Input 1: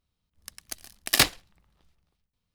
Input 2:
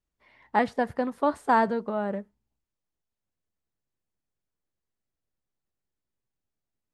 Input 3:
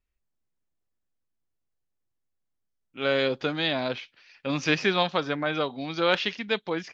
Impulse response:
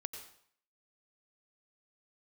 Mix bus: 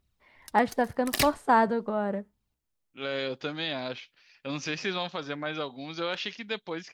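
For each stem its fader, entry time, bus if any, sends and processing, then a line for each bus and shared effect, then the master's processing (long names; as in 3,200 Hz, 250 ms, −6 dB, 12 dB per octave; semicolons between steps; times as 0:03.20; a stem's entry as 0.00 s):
−0.5 dB, 0.00 s, no send, phase shifter 0.87 Hz, delay 3.7 ms, feedback 57%; automatic ducking −9 dB, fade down 0.70 s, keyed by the second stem
0.0 dB, 0.00 s, no send, no processing
−6.0 dB, 0.00 s, no send, brickwall limiter −14.5 dBFS, peak gain reduction 5.5 dB; high-shelf EQ 6,200 Hz +9 dB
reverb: not used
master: no processing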